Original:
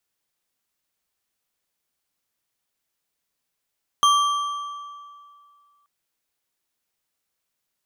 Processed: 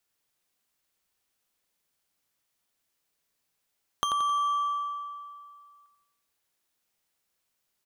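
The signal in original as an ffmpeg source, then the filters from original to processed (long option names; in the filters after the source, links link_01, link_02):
-f lavfi -i "aevalsrc='0.224*pow(10,-3*t/2.23)*sin(2*PI*1160*t)+0.106*pow(10,-3*t/1.645)*sin(2*PI*3198.1*t)+0.0501*pow(10,-3*t/1.344)*sin(2*PI*6268.6*t)+0.0237*pow(10,-3*t/1.156)*sin(2*PI*10362.3*t)+0.0112*pow(10,-3*t/1.025)*sin(2*PI*15474.4*t)':duration=1.83:sample_rate=44100"
-filter_complex "[0:a]acompressor=threshold=-27dB:ratio=10,asplit=2[link_01][link_02];[link_02]aecho=0:1:88|176|264|352|440|528:0.447|0.214|0.103|0.0494|0.0237|0.0114[link_03];[link_01][link_03]amix=inputs=2:normalize=0"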